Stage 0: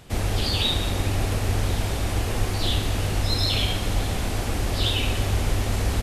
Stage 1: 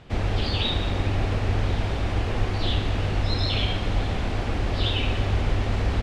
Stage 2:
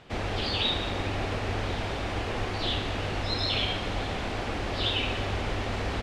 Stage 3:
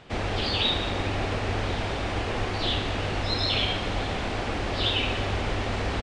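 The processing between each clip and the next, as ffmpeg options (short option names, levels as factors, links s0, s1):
-af "lowpass=3500"
-af "lowshelf=f=190:g=-11"
-af "aresample=22050,aresample=44100,volume=1.33"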